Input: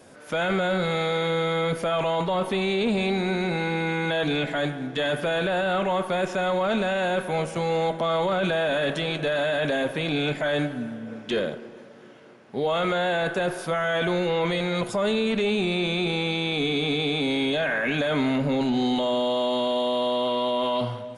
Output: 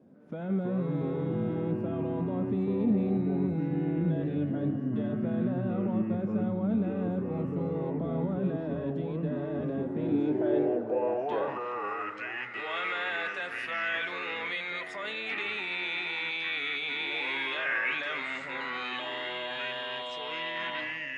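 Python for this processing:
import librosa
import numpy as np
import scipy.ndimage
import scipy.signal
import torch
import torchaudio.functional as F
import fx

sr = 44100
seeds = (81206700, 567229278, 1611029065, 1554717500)

y = fx.echo_pitch(x, sr, ms=220, semitones=-5, count=2, db_per_echo=-3.0)
y = fx.filter_sweep_bandpass(y, sr, from_hz=210.0, to_hz=2100.0, start_s=9.85, end_s=12.56, q=2.0)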